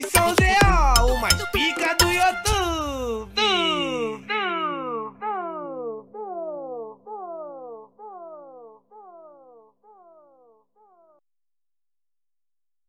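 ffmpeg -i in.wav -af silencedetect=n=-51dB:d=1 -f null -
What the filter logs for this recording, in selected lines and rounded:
silence_start: 11.12
silence_end: 12.89 | silence_duration: 1.77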